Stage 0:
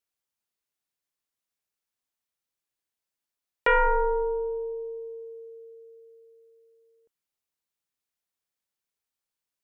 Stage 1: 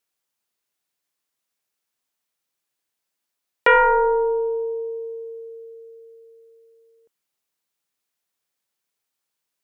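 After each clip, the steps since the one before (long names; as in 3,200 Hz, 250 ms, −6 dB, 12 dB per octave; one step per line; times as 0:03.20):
high-pass filter 140 Hz 6 dB per octave
level +7 dB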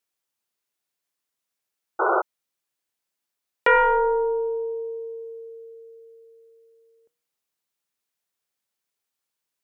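hum removal 158.5 Hz, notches 33
sound drawn into the spectrogram noise, 0:01.99–0:02.22, 330–1,500 Hz −18 dBFS
level −2.5 dB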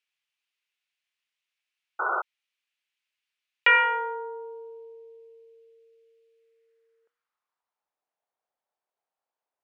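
band-pass filter sweep 2,600 Hz → 730 Hz, 0:06.33–0:07.98
level +8.5 dB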